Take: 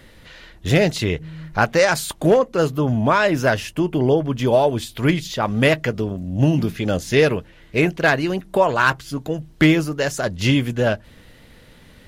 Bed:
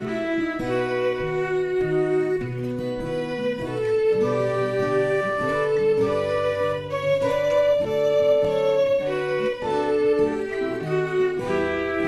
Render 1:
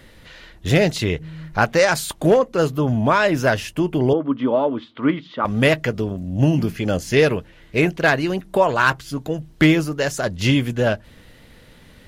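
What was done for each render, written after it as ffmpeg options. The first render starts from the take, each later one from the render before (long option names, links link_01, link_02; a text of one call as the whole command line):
ffmpeg -i in.wav -filter_complex "[0:a]asettb=1/sr,asplit=3[link_01][link_02][link_03];[link_01]atrim=end=4.134[link_04];[link_02]atrim=start=4.13:end=5.45,asetpts=PTS-STARTPTS,afade=type=in:duration=0.004:curve=qsin,afade=type=out:start_time=1.316:duration=0.004:curve=qsin,highpass=260,equalizer=frequency=270:width_type=q:width=4:gain=9,equalizer=frequency=390:width_type=q:width=4:gain=-6,equalizer=frequency=730:width_type=q:width=4:gain=-8,equalizer=frequency=1200:width_type=q:width=4:gain=7,equalizer=frequency=1700:width_type=q:width=4:gain=-6,equalizer=frequency=2500:width_type=q:width=4:gain=-9,lowpass=frequency=2800:width=0.5412,lowpass=frequency=2800:width=1.3066[link_05];[link_03]atrim=start=5.446[link_06];[link_04][link_05]acrossfade=duration=0.004:curve1=hsin:curve2=qsin[link_07];[link_07][link_06]acrossfade=duration=0.004:curve1=qsin:curve2=hsin,asettb=1/sr,asplit=3[link_08][link_09][link_10];[link_08]atrim=end=6.404[link_11];[link_09]atrim=start=6.4:end=7.17,asetpts=PTS-STARTPTS,afade=type=in:duration=0.004:curve=qsin,afade=type=out:start_time=0.766:duration=0.004:curve=qsin,bandreject=frequency=3700:width=7.8[link_12];[link_10]atrim=start=7.166[link_13];[link_11][link_12]acrossfade=duration=0.004:curve1=hsin:curve2=qsin[link_14];[link_14][link_13]acrossfade=duration=0.004:curve1=qsin:curve2=hsin" out.wav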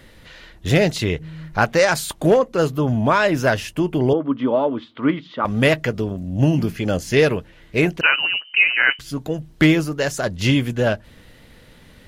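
ffmpeg -i in.wav -filter_complex "[0:a]asettb=1/sr,asplit=3[link_01][link_02][link_03];[link_01]atrim=end=8.014[link_04];[link_02]atrim=start=8.01:end=8.99,asetpts=PTS-STARTPTS,afade=type=in:duration=0.004:curve=qsin,afade=type=out:start_time=0.976:duration=0.004:curve=qsin,lowpass=frequency=2600:width_type=q:width=0.5098,lowpass=frequency=2600:width_type=q:width=0.6013,lowpass=frequency=2600:width_type=q:width=0.9,lowpass=frequency=2600:width_type=q:width=2.563,afreqshift=-3100[link_05];[link_03]atrim=start=8.986[link_06];[link_04][link_05]acrossfade=duration=0.004:curve1=hsin:curve2=qsin[link_07];[link_07][link_06]acrossfade=duration=0.004:curve1=qsin:curve2=hsin" out.wav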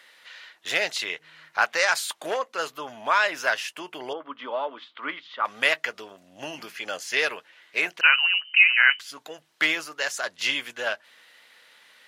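ffmpeg -i in.wav -af "highpass=1100,highshelf=frequency=8700:gain=-7.5" out.wav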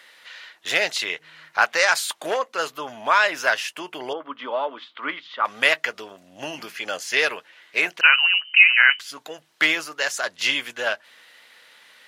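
ffmpeg -i in.wav -af "volume=3.5dB,alimiter=limit=-2dB:level=0:latency=1" out.wav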